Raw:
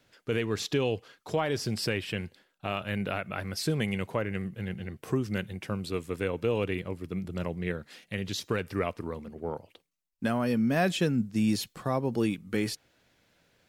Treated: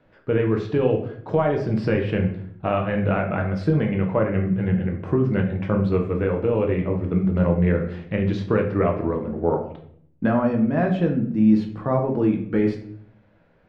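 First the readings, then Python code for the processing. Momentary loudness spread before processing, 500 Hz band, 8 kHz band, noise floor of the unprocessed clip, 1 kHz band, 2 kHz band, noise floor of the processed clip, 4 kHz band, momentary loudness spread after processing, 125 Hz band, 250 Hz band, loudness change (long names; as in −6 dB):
10 LU, +9.5 dB, below −20 dB, −73 dBFS, +7.5 dB, +3.0 dB, −58 dBFS, can't be measured, 5 LU, +10.5 dB, +9.5 dB, +9.0 dB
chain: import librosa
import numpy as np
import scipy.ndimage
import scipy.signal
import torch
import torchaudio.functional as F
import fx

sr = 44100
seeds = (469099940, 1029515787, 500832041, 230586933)

y = scipy.signal.sosfilt(scipy.signal.butter(2, 1400.0, 'lowpass', fs=sr, output='sos'), x)
y = fx.rider(y, sr, range_db=4, speed_s=0.5)
y = fx.room_shoebox(y, sr, seeds[0], volume_m3=97.0, walls='mixed', distance_m=0.63)
y = y * librosa.db_to_amplitude(6.5)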